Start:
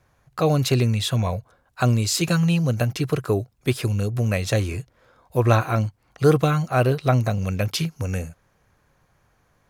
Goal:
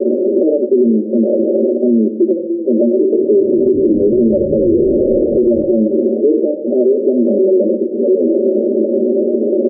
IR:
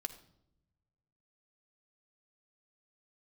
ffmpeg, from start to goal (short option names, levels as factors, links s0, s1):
-filter_complex "[0:a]aeval=exprs='val(0)+0.5*0.0944*sgn(val(0))':c=same,aecho=1:1:5.3:0.99,acompressor=threshold=0.112:ratio=20,asuperpass=centerf=360:order=20:qfactor=1,asettb=1/sr,asplit=3[s0][s1][s2];[s0]atrim=end=2.924[s3];[s1]atrim=start=2.92:end=5.62,asetpts=PTS-STARTPTS,afade=t=in:d=0.004:c=qsin,afade=t=out:st=2.696:d=0.004:c=qsin,asplit=8[s4][s5][s6][s7][s8][s9][s10][s11];[s5]adelay=214,afreqshift=-62,volume=0.266[s12];[s6]adelay=428,afreqshift=-124,volume=0.162[s13];[s7]adelay=642,afreqshift=-186,volume=0.0989[s14];[s8]adelay=856,afreqshift=-248,volume=0.0603[s15];[s9]adelay=1070,afreqshift=-310,volume=0.0367[s16];[s10]adelay=1284,afreqshift=-372,volume=0.0224[s17];[s11]adelay=1498,afreqshift=-434,volume=0.0136[s18];[s4][s12][s13][s14][s15][s16][s17][s18]amix=inputs=8:normalize=0,atrim=end_sample=119070[s19];[s2]atrim=start=5.616[s20];[s3][s19]acrossfade=d=0.004:c1=hsin:c2=qsin[s21];[s21][s20]acrossfade=d=0.004:c1=qsin:c2=hsin[s22];[1:a]atrim=start_sample=2205[s23];[s22][s23]afir=irnorm=-1:irlink=0,alimiter=level_in=18.8:limit=0.891:release=50:level=0:latency=1,volume=0.668" -ar 48000 -c:a libopus -b:a 256k